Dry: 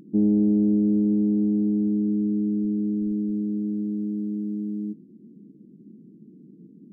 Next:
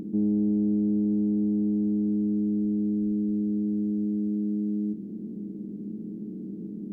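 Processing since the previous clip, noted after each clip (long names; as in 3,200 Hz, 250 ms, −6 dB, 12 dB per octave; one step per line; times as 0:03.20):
compressor on every frequency bin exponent 0.4
dynamic equaliser 610 Hz, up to −4 dB, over −36 dBFS, Q 0.88
level −4 dB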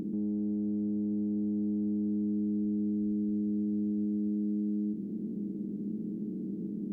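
brickwall limiter −26 dBFS, peak gain reduction 8.5 dB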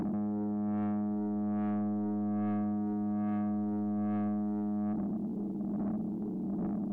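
phase shifter 1.2 Hz, delay 2.3 ms, feedback 36%
soft clipping −34.5 dBFS, distortion −9 dB
level +4.5 dB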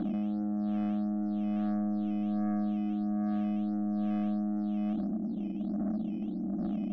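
phaser with its sweep stopped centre 630 Hz, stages 8
in parallel at −6 dB: sample-and-hold swept by an LFO 11×, swing 100% 1.5 Hz
on the sum: high-frequency loss of the air 300 metres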